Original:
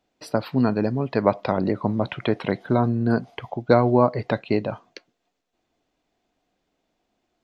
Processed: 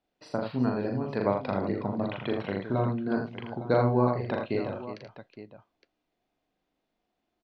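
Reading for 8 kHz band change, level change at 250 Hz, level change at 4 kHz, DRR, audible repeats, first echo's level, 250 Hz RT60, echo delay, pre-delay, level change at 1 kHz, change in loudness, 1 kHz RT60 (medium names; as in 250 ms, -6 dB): no reading, -6.5 dB, -7.0 dB, no reverb, 4, -3.0 dB, no reverb, 40 ms, no reverb, -6.5 dB, -6.5 dB, no reverb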